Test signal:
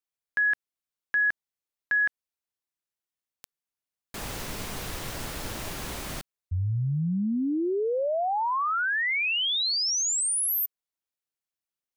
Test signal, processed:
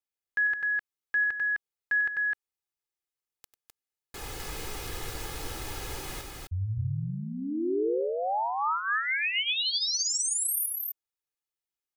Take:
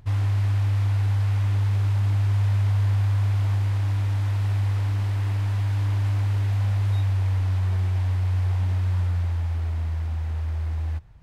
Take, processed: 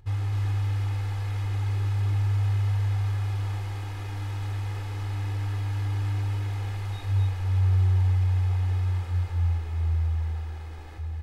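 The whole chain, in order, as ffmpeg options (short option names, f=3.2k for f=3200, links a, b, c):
-af "aecho=1:1:2.4:0.59,aecho=1:1:96.21|256.6:0.282|0.708,volume=-5.5dB"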